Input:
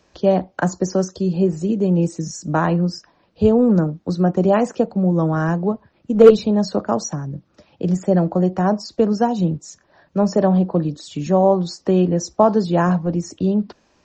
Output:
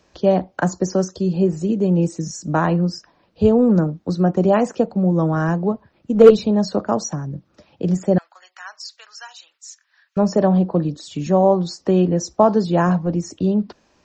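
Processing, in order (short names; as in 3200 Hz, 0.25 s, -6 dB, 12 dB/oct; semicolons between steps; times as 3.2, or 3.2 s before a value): 8.18–10.17 HPF 1500 Hz 24 dB/oct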